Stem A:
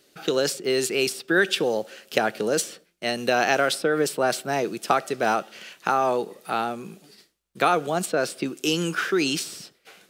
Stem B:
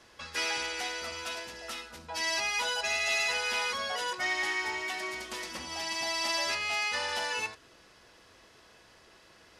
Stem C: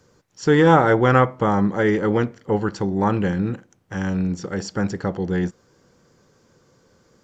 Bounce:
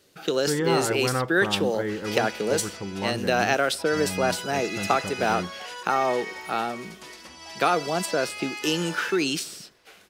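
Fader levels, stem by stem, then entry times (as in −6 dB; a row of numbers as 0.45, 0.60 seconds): −1.5, −5.0, −11.0 decibels; 0.00, 1.70, 0.00 seconds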